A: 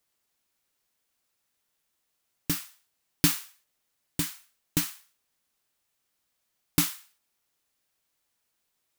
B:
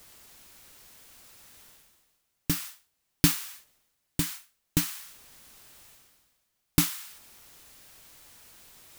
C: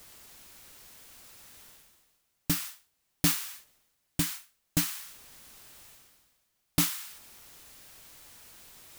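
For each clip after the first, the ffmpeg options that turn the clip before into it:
ffmpeg -i in.wav -af "lowshelf=frequency=120:gain=8,areverse,acompressor=mode=upward:threshold=-33dB:ratio=2.5,areverse" out.wav
ffmpeg -i in.wav -af "asoftclip=type=hard:threshold=-19.5dB,volume=1dB" out.wav

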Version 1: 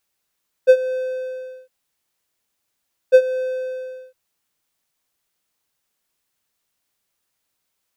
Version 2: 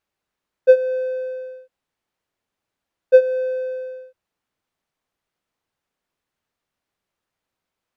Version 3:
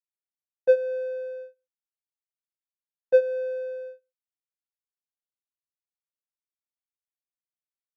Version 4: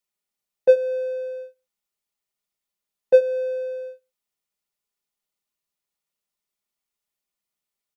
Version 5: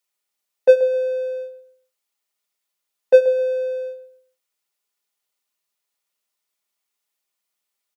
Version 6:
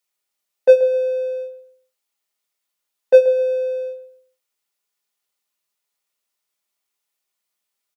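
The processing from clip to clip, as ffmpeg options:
ffmpeg -i in.wav -af "lowpass=frequency=1500:poles=1,volume=1.5dB" out.wav
ffmpeg -i in.wav -af "agate=range=-31dB:threshold=-32dB:ratio=16:detection=peak,volume=-6.5dB" out.wav
ffmpeg -i in.wav -af "bandreject=frequency=1600:width=10,aecho=1:1:4.9:0.45,volume=9dB" out.wav
ffmpeg -i in.wav -filter_complex "[0:a]highpass=frequency=540:poles=1,asplit=2[link_01][link_02];[link_02]adelay=132,lowpass=frequency=2000:poles=1,volume=-12dB,asplit=2[link_03][link_04];[link_04]adelay=132,lowpass=frequency=2000:poles=1,volume=0.29,asplit=2[link_05][link_06];[link_06]adelay=132,lowpass=frequency=2000:poles=1,volume=0.29[link_07];[link_01][link_03][link_05][link_07]amix=inputs=4:normalize=0,volume=6dB" out.wav
ffmpeg -i in.wav -filter_complex "[0:a]asplit=2[link_01][link_02];[link_02]adelay=23,volume=-8.5dB[link_03];[link_01][link_03]amix=inputs=2:normalize=0" out.wav

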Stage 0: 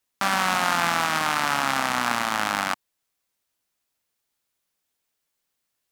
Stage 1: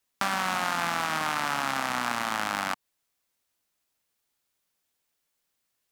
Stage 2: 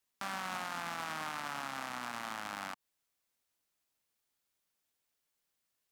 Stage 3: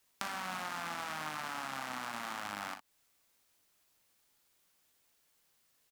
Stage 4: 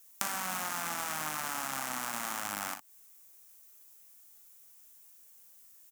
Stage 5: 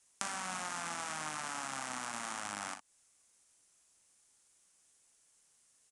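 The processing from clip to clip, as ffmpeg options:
ffmpeg -i in.wav -filter_complex "[0:a]acrossover=split=1200|2600[link_01][link_02][link_03];[link_01]acompressor=threshold=-29dB:ratio=4[link_04];[link_02]acompressor=threshold=-31dB:ratio=4[link_05];[link_03]acompressor=threshold=-34dB:ratio=4[link_06];[link_04][link_05][link_06]amix=inputs=3:normalize=0" out.wav
ffmpeg -i in.wav -af "alimiter=limit=-23dB:level=0:latency=1:release=73,volume=-5dB" out.wav
ffmpeg -i in.wav -af "acompressor=threshold=-47dB:ratio=5,acrusher=bits=5:mode=log:mix=0:aa=0.000001,aecho=1:1:39|59:0.335|0.299,volume=9.5dB" out.wav
ffmpeg -i in.wav -af "aexciter=amount=4.5:drive=2.8:freq=5900,volume=2.5dB" out.wav
ffmpeg -i in.wav -af "aresample=22050,aresample=44100,volume=-3.5dB" out.wav

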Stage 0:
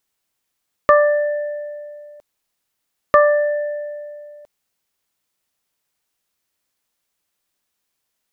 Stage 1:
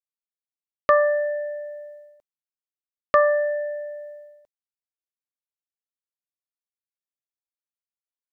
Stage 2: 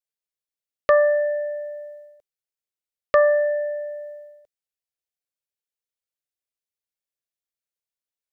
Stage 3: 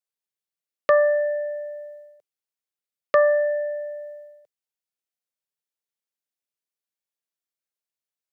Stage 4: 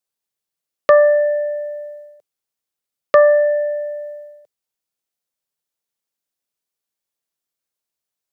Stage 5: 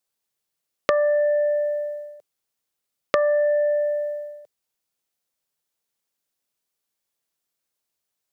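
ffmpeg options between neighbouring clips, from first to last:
ffmpeg -i in.wav -af "agate=range=-33dB:threshold=-35dB:ratio=3:detection=peak,volume=-4.5dB" out.wav
ffmpeg -i in.wav -af "equalizer=frequency=250:width_type=o:width=1:gain=-10,equalizer=frequency=500:width_type=o:width=1:gain=5,equalizer=frequency=1000:width_type=o:width=1:gain=-8,volume=2dB" out.wav
ffmpeg -i in.wav -af "highpass=frequency=120:width=0.5412,highpass=frequency=120:width=1.3066,volume=-1dB" out.wav
ffmpeg -i in.wav -af "equalizer=frequency=2100:width=1:gain=-3,volume=7dB" out.wav
ffmpeg -i in.wav -af "acompressor=threshold=-22dB:ratio=6,volume=3dB" out.wav

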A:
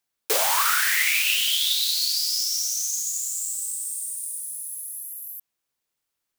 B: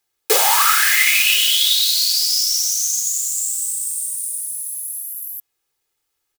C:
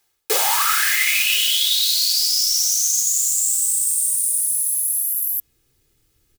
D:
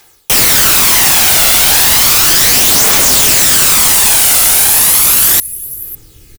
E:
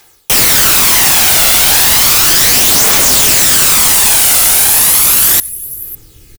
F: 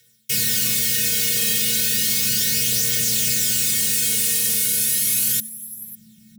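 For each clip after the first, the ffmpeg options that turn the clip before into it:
ffmpeg -i in.wav -af "aecho=1:1:2.4:0.62,volume=5.5dB" out.wav
ffmpeg -i in.wav -af "asubboost=boost=12:cutoff=240,areverse,acompressor=threshold=-24dB:ratio=6,areverse,volume=8dB" out.wav
ffmpeg -i in.wav -af "aecho=1:1:551:0.0631,aeval=exprs='0.531*sin(PI/2*7.94*val(0)/0.531)':channel_layout=same,aphaser=in_gain=1:out_gain=1:delay=1.5:decay=0.36:speed=0.34:type=triangular" out.wav
ffmpeg -i in.wav -filter_complex "[0:a]asplit=2[link_01][link_02];[link_02]adelay=93.29,volume=-27dB,highshelf=frequency=4000:gain=-2.1[link_03];[link_01][link_03]amix=inputs=2:normalize=0" out.wav
ffmpeg -i in.wav -af "afftfilt=real='hypot(re,im)*cos(PI*b)':imag='0':win_size=512:overlap=0.75,afreqshift=-220,asuperstop=centerf=890:order=4:qfactor=0.62,volume=-8.5dB" out.wav

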